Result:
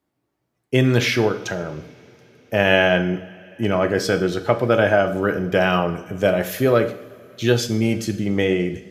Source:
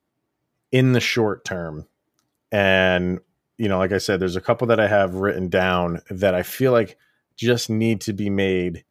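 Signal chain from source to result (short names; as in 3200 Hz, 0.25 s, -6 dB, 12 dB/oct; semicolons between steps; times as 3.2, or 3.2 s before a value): two-slope reverb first 0.6 s, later 4.5 s, from -21 dB, DRR 7.5 dB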